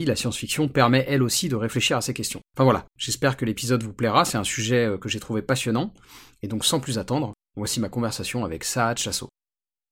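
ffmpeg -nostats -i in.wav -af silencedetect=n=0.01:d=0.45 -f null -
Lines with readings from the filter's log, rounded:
silence_start: 9.27
silence_end: 9.92 | silence_duration: 0.65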